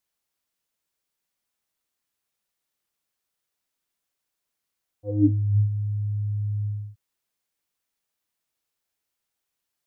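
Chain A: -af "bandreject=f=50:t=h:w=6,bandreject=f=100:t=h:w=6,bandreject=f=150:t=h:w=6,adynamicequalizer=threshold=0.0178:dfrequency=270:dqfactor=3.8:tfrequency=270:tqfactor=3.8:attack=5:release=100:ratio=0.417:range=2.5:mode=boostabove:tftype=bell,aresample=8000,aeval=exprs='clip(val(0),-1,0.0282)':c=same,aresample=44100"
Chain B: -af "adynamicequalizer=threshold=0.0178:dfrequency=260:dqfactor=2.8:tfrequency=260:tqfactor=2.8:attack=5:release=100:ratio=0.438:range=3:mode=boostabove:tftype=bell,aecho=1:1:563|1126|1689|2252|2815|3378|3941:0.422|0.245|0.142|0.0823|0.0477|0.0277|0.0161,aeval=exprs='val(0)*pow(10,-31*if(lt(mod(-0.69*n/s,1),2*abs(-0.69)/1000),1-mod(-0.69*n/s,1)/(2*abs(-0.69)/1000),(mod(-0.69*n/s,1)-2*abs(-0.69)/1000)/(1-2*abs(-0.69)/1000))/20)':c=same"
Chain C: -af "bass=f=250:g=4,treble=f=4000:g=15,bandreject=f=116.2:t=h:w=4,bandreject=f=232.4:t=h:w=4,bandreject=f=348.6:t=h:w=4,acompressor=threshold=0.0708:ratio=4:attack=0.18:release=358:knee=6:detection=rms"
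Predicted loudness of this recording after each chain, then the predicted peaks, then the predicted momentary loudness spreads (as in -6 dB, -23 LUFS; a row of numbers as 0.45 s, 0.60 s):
-29.5 LUFS, -32.0 LUFS, -28.5 LUFS; -7.5 dBFS, -14.0 dBFS, -19.0 dBFS; 12 LU, 23 LU, 7 LU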